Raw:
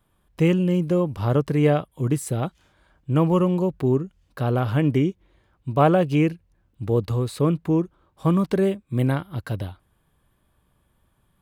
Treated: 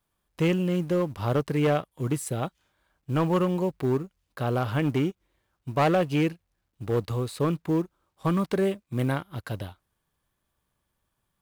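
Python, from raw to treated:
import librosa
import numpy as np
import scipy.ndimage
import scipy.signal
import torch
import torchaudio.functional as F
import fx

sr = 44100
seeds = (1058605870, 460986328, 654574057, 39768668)

y = fx.law_mismatch(x, sr, coded='A')
y = np.clip(y, -10.0 ** (-14.5 / 20.0), 10.0 ** (-14.5 / 20.0))
y = fx.low_shelf(y, sr, hz=440.0, db=-5.5)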